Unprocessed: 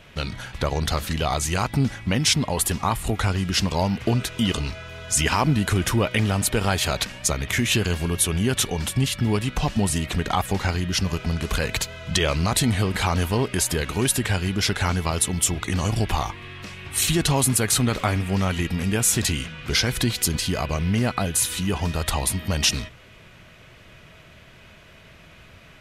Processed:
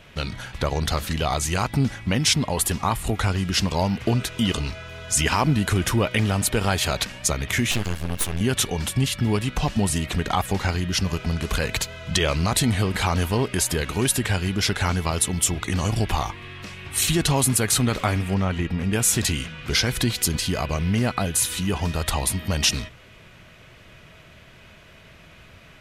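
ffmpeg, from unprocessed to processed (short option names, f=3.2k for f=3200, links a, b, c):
-filter_complex "[0:a]asettb=1/sr,asplit=3[a][b][c];[a]atrim=end=7.714[d];[b]atrim=start=7.71:end=8.41,asetpts=PTS-STARTPTS,afade=t=in:d=0.004:c=qsin,afade=t=out:st=0.696:d=0.004:c=qsin,aeval=exprs='max(val(0),0)':c=same[e];[c]atrim=start=8.406[f];[d][e]acrossfade=d=0.004:c1=hsin:c2=qsin[g];[g][f]acrossfade=d=0.004:c1=qsin:c2=hsin,asettb=1/sr,asplit=3[h][i][j];[h]atrim=end=18.344[k];[i]atrim=start=18.34:end=18.93,asetpts=PTS-STARTPTS,afade=t=in:d=0.004:c=qsin,afade=t=out:st=0.586:d=0.004:c=qsin,lowpass=f=2k:p=1[l];[j]atrim=start=18.926[m];[k][l]acrossfade=d=0.004:c1=hsin:c2=qsin[n];[n][m]acrossfade=d=0.004:c1=qsin:c2=hsin"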